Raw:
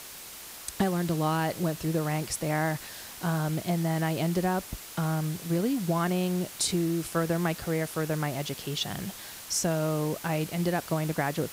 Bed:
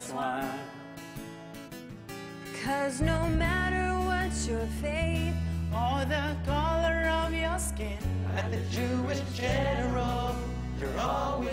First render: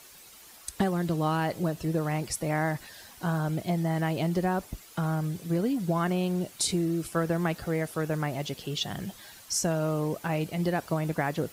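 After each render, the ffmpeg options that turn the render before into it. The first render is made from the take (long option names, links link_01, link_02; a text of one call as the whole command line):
ffmpeg -i in.wav -af "afftdn=noise_reduction=10:noise_floor=-44" out.wav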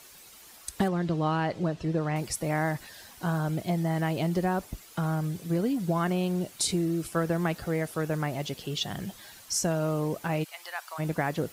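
ffmpeg -i in.wav -filter_complex "[0:a]asettb=1/sr,asplit=3[link_01][link_02][link_03];[link_01]atrim=end=0.884[link_04];[link_02]atrim=start=0.88:end=2.16,asetpts=PTS-STARTPTS,afade=type=in:duration=0.004:curve=qsin,afade=type=out:start_time=1.276:duration=0.004:curve=qsin,lowpass=4900[link_05];[link_03]atrim=start=2.156[link_06];[link_04][link_05]acrossfade=duration=0.004:curve1=hsin:curve2=qsin[link_07];[link_07][link_06]acrossfade=duration=0.004:curve1=qsin:curve2=hsin,asplit=3[link_08][link_09][link_10];[link_08]afade=type=out:start_time=10.43:duration=0.02[link_11];[link_09]highpass=frequency=910:width=0.5412,highpass=frequency=910:width=1.3066,afade=type=in:start_time=10.43:duration=0.02,afade=type=out:start_time=10.98:duration=0.02[link_12];[link_10]afade=type=in:start_time=10.98:duration=0.02[link_13];[link_11][link_12][link_13]amix=inputs=3:normalize=0" out.wav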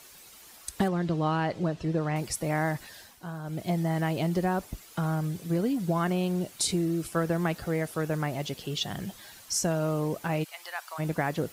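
ffmpeg -i in.wav -filter_complex "[0:a]asplit=3[link_01][link_02][link_03];[link_01]atrim=end=3.22,asetpts=PTS-STARTPTS,afade=type=out:start_time=2.96:duration=0.26:silence=0.334965[link_04];[link_02]atrim=start=3.22:end=3.43,asetpts=PTS-STARTPTS,volume=-9.5dB[link_05];[link_03]atrim=start=3.43,asetpts=PTS-STARTPTS,afade=type=in:duration=0.26:silence=0.334965[link_06];[link_04][link_05][link_06]concat=n=3:v=0:a=1" out.wav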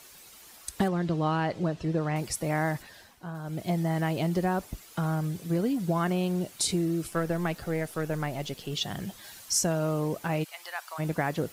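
ffmpeg -i in.wav -filter_complex "[0:a]asettb=1/sr,asplit=3[link_01][link_02][link_03];[link_01]atrim=end=2.824[link_04];[link_02]atrim=start=2.82:end=3.35,asetpts=PTS-STARTPTS,afade=type=in:duration=0.004:curve=qsin,afade=type=out:start_time=0.526:duration=0.004:curve=qsin,highshelf=frequency=3800:gain=-7.5[link_05];[link_03]atrim=start=3.346[link_06];[link_04][link_05]acrossfade=duration=0.004:curve1=hsin:curve2=qsin[link_07];[link_07][link_06]acrossfade=duration=0.004:curve1=qsin:curve2=hsin,asettb=1/sr,asplit=3[link_08][link_09][link_10];[link_08]atrim=end=7.104[link_11];[link_09]atrim=start=7.1:end=8.73,asetpts=PTS-STARTPTS,afade=type=in:duration=0.004:curve=qsin,afade=type=out:start_time=1.626:duration=0.004:curve=qsin,aeval=exprs='if(lt(val(0),0),0.708*val(0),val(0))':channel_layout=same[link_12];[link_10]atrim=start=8.726[link_13];[link_11][link_12]acrossfade=duration=0.004:curve1=hsin:curve2=qsin[link_14];[link_14][link_13]acrossfade=duration=0.004:curve1=qsin:curve2=hsin,asettb=1/sr,asplit=3[link_15][link_16][link_17];[link_15]atrim=end=9.244[link_18];[link_16]atrim=start=9.24:end=9.64,asetpts=PTS-STARTPTS,afade=type=in:duration=0.004:curve=qsin,afade=type=out:start_time=0.396:duration=0.004:curve=qsin,equalizer=frequency=12000:width_type=o:width=2.4:gain=3.5[link_19];[link_17]atrim=start=9.636[link_20];[link_18][link_19]acrossfade=duration=0.004:curve1=hsin:curve2=qsin[link_21];[link_21][link_20]acrossfade=duration=0.004:curve1=qsin:curve2=hsin" out.wav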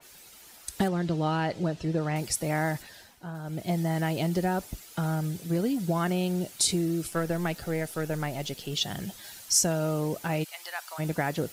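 ffmpeg -i in.wav -af "bandreject=frequency=1100:width=11,adynamicequalizer=threshold=0.00501:dfrequency=3000:dqfactor=0.7:tfrequency=3000:tqfactor=0.7:attack=5:release=100:ratio=0.375:range=2:mode=boostabove:tftype=highshelf" out.wav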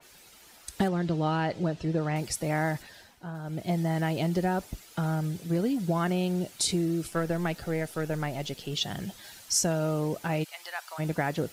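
ffmpeg -i in.wav -af "highshelf=frequency=7000:gain=-6.5" out.wav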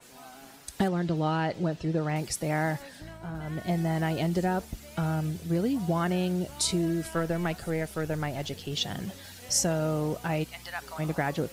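ffmpeg -i in.wav -i bed.wav -filter_complex "[1:a]volume=-17.5dB[link_01];[0:a][link_01]amix=inputs=2:normalize=0" out.wav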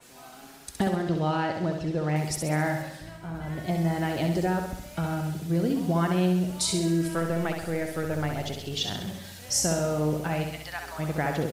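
ffmpeg -i in.wav -af "aecho=1:1:66|132|198|264|330|396|462:0.531|0.292|0.161|0.0883|0.0486|0.0267|0.0147" out.wav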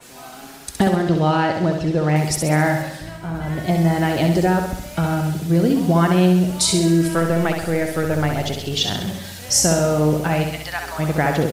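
ffmpeg -i in.wav -af "volume=9dB" out.wav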